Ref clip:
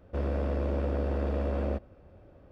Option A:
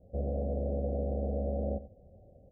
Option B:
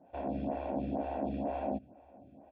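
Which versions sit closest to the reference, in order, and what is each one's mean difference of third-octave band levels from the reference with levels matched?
B, A; 6.5 dB, 8.5 dB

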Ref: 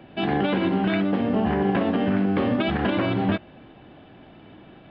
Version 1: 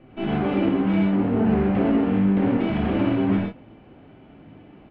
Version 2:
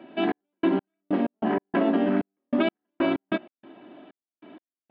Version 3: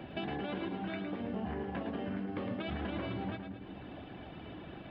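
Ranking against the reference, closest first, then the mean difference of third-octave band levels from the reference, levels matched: 1, 3, 2; 3.5 dB, 5.0 dB, 11.0 dB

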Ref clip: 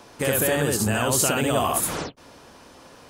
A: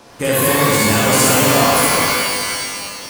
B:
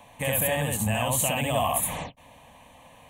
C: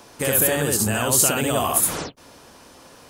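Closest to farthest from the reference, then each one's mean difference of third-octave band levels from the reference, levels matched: C, B, A; 2.0 dB, 4.0 dB, 8.5 dB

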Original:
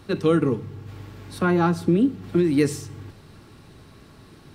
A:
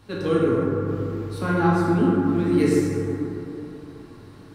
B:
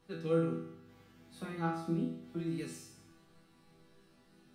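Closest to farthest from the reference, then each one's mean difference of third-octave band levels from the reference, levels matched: B, A; 4.0 dB, 6.5 dB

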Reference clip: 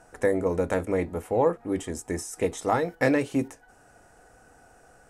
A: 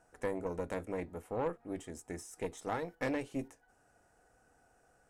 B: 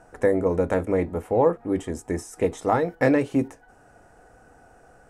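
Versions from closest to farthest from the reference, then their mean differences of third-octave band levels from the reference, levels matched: A, B; 1.0 dB, 2.0 dB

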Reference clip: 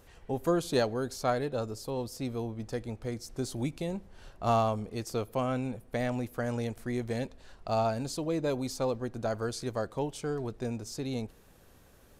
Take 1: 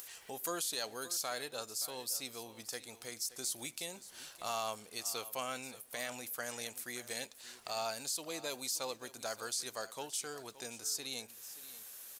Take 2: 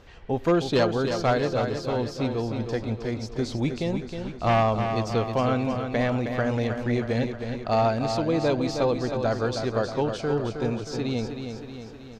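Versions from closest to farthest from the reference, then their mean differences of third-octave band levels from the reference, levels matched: 2, 1; 7.0 dB, 12.0 dB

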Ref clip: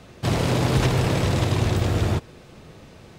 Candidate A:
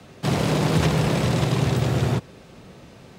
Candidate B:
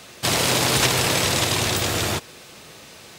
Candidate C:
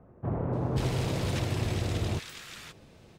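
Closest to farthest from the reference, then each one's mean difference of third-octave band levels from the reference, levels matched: A, C, B; 1.0 dB, 4.5 dB, 7.5 dB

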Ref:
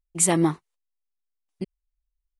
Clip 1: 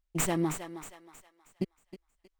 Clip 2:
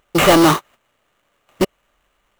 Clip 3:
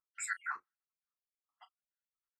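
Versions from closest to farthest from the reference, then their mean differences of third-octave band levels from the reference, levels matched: 1, 2, 3; 7.0 dB, 12.5 dB, 17.5 dB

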